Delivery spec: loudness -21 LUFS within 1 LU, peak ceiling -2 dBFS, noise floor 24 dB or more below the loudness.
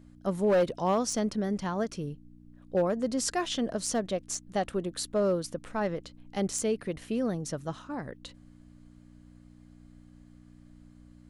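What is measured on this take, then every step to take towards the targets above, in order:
clipped 0.5%; flat tops at -19.5 dBFS; hum 60 Hz; harmonics up to 300 Hz; hum level -54 dBFS; loudness -31.0 LUFS; peak -19.5 dBFS; loudness target -21.0 LUFS
-> clip repair -19.5 dBFS; de-hum 60 Hz, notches 5; gain +10 dB

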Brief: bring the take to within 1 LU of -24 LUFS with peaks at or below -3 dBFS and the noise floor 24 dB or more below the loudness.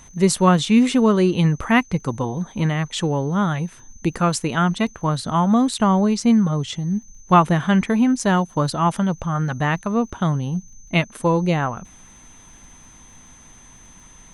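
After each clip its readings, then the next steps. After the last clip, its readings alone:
ticks 31/s; steady tone 6200 Hz; tone level -47 dBFS; loudness -20.0 LUFS; peak -2.0 dBFS; loudness target -24.0 LUFS
-> de-click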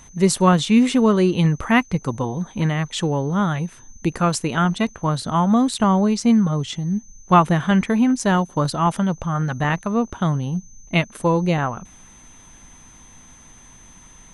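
ticks 0.28/s; steady tone 6200 Hz; tone level -47 dBFS
-> notch 6200 Hz, Q 30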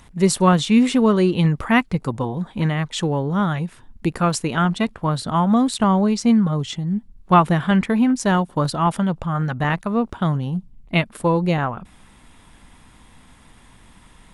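steady tone none; loudness -20.0 LUFS; peak -2.0 dBFS; loudness target -24.0 LUFS
-> gain -4 dB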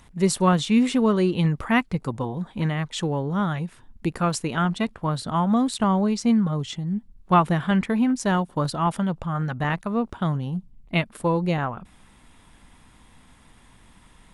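loudness -24.0 LUFS; peak -6.0 dBFS; noise floor -54 dBFS

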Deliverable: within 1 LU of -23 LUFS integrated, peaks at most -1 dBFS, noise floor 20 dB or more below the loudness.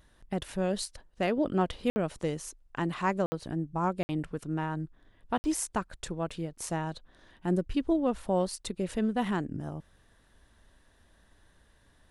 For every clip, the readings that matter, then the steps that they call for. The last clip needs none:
dropouts 4; longest dropout 60 ms; loudness -32.0 LUFS; peak -14.5 dBFS; loudness target -23.0 LUFS
-> interpolate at 1.9/3.26/4.03/5.38, 60 ms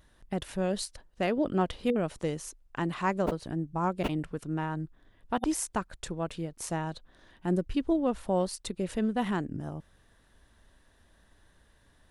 dropouts 0; loudness -32.0 LUFS; peak -14.5 dBFS; loudness target -23.0 LUFS
-> gain +9 dB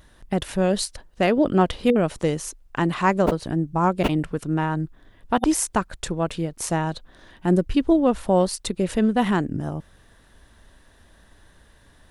loudness -23.0 LUFS; peak -5.5 dBFS; noise floor -55 dBFS

